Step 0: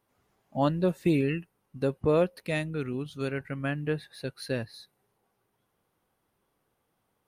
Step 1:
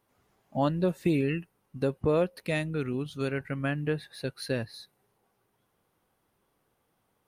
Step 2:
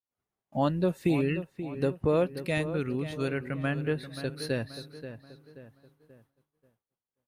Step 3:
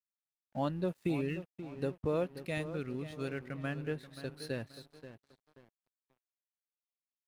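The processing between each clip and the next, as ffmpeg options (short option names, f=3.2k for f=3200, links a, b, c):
-af "acompressor=threshold=-29dB:ratio=1.5,volume=2dB"
-filter_complex "[0:a]asplit=2[a][b];[b]adelay=531,lowpass=f=2.5k:p=1,volume=-11dB,asplit=2[c][d];[d]adelay=531,lowpass=f=2.5k:p=1,volume=0.44,asplit=2[e][f];[f]adelay=531,lowpass=f=2.5k:p=1,volume=0.44,asplit=2[g][h];[h]adelay=531,lowpass=f=2.5k:p=1,volume=0.44,asplit=2[i][j];[j]adelay=531,lowpass=f=2.5k:p=1,volume=0.44[k];[a][c][e][g][i][k]amix=inputs=6:normalize=0,agate=range=-33dB:threshold=-56dB:ratio=3:detection=peak"
-af "aeval=exprs='sgn(val(0))*max(abs(val(0))-0.00335,0)':c=same,volume=-7dB"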